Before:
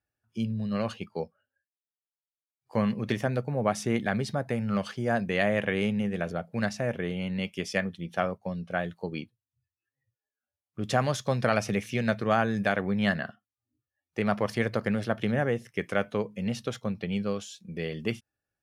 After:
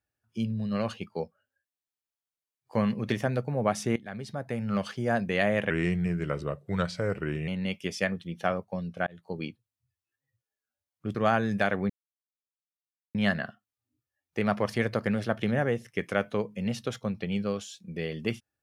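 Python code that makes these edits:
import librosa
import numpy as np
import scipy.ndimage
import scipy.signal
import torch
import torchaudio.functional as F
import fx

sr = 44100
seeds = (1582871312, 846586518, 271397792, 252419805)

y = fx.edit(x, sr, fx.fade_in_from(start_s=3.96, length_s=0.85, floor_db=-18.5),
    fx.speed_span(start_s=5.7, length_s=1.51, speed=0.85),
    fx.fade_in_span(start_s=8.8, length_s=0.31),
    fx.cut(start_s=10.88, length_s=1.32),
    fx.insert_silence(at_s=12.95, length_s=1.25), tone=tone)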